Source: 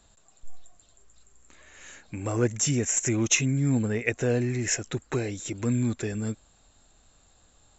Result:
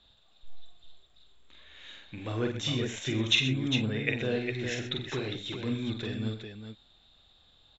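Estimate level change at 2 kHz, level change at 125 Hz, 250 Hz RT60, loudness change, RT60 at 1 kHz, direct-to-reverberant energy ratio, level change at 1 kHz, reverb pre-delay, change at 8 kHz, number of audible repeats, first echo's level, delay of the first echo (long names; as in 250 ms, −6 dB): −1.0 dB, −5.5 dB, no reverb audible, −4.0 dB, no reverb audible, no reverb audible, −4.0 dB, no reverb audible, can't be measured, 4, −4.5 dB, 46 ms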